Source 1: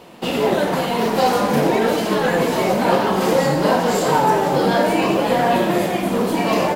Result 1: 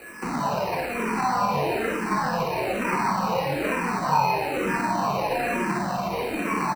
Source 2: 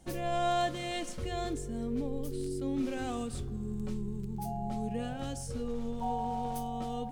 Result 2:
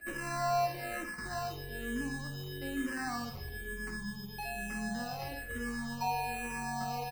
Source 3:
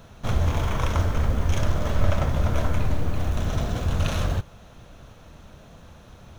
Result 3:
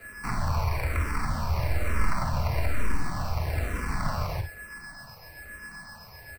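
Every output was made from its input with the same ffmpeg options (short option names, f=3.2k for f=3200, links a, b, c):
-filter_complex "[0:a]lowpass=4.3k,aeval=exprs='val(0)+0.00501*sin(2*PI*1700*n/s)':c=same,firequalizer=gain_entry='entry(530,0);entry(1000,11);entry(3100,2)':delay=0.05:min_phase=1,acrossover=split=180[a][b];[b]acompressor=threshold=-30dB:ratio=1.5[c];[a][c]amix=inputs=2:normalize=0,acrossover=split=100[d][e];[e]acrusher=samples=13:mix=1:aa=0.000001[f];[d][f]amix=inputs=2:normalize=0,acrossover=split=2900[g][h];[h]acompressor=threshold=-34dB:ratio=4:attack=1:release=60[i];[g][i]amix=inputs=2:normalize=0,asplit=2[j][k];[k]aecho=0:1:50|64:0.376|0.282[l];[j][l]amix=inputs=2:normalize=0,asplit=2[m][n];[n]afreqshift=-1.1[o];[m][o]amix=inputs=2:normalize=1,volume=-2.5dB"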